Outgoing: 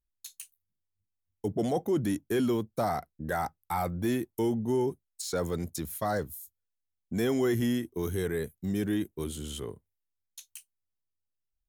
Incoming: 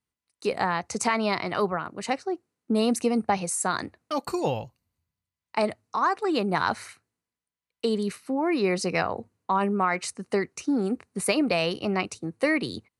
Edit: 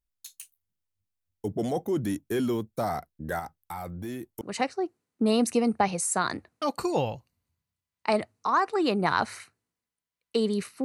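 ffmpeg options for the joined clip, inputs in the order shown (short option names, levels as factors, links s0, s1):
-filter_complex "[0:a]asettb=1/sr,asplit=3[s0][s1][s2];[s0]atrim=end=3.394[s3];[s1]atrim=start=3.39:end=4.41,asetpts=PTS-STARTPTS,afade=t=in:d=0.004:c=qsin,afade=t=out:st=1.016:d=0.004:c=qsin,acompressor=threshold=0.0178:ratio=2.5:attack=3.2:release=140:knee=1:detection=peak[s4];[s2]atrim=start=4.406[s5];[s3][s4]acrossfade=d=0.004:c1=hsin:c2=qsin[s6];[s6][s5]acrossfade=d=0.004:c1=qsin:c2=hsin,apad=whole_dur=10.84,atrim=end=10.84,atrim=end=4.412[s7];[1:a]atrim=start=1.898:end=8.33[s8];[s7][s8]acrossfade=d=0.004:c1=hsin:c2=hsin"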